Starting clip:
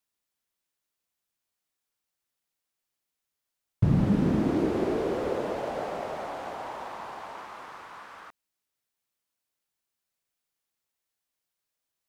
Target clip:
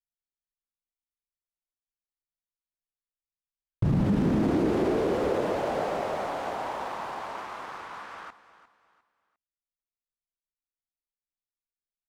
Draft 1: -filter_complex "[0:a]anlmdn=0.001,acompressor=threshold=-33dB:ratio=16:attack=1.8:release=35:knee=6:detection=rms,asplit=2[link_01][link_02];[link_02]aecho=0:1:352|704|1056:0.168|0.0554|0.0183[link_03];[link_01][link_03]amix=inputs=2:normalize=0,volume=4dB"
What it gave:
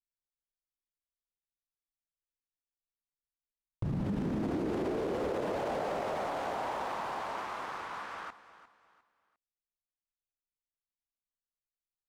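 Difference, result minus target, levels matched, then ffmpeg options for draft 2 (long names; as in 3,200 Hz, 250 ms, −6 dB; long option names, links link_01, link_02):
downward compressor: peak gain reduction +10 dB
-filter_complex "[0:a]anlmdn=0.001,acompressor=threshold=-22.5dB:ratio=16:attack=1.8:release=35:knee=6:detection=rms,asplit=2[link_01][link_02];[link_02]aecho=0:1:352|704|1056:0.168|0.0554|0.0183[link_03];[link_01][link_03]amix=inputs=2:normalize=0,volume=4dB"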